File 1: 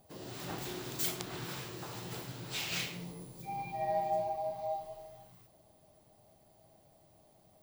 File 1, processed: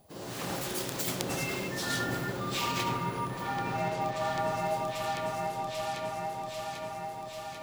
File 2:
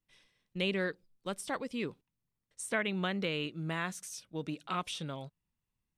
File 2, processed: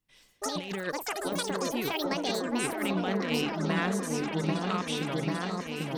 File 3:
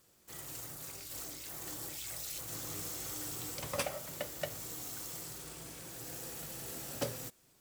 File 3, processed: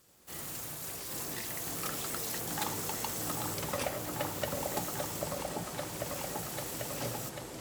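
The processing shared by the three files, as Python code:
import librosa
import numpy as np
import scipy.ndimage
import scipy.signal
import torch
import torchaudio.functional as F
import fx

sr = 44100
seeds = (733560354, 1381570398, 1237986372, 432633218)

y = fx.echo_pitch(x, sr, ms=85, semitones=7, count=3, db_per_echo=-3.0)
y = fx.cheby_harmonics(y, sr, harmonics=(3,), levels_db=(-16,), full_scale_db=-15.5)
y = fx.over_compress(y, sr, threshold_db=-39.0, ratio=-0.5)
y = fx.echo_opening(y, sr, ms=792, hz=750, octaves=1, feedback_pct=70, wet_db=0)
y = F.gain(torch.from_numpy(y), 8.0).numpy()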